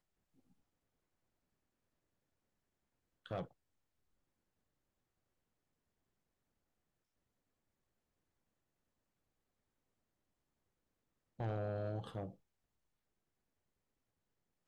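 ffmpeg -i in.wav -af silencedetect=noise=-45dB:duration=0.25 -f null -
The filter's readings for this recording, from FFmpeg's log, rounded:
silence_start: 0.00
silence_end: 3.26 | silence_duration: 3.26
silence_start: 3.45
silence_end: 11.40 | silence_duration: 7.95
silence_start: 12.30
silence_end: 14.67 | silence_duration: 2.37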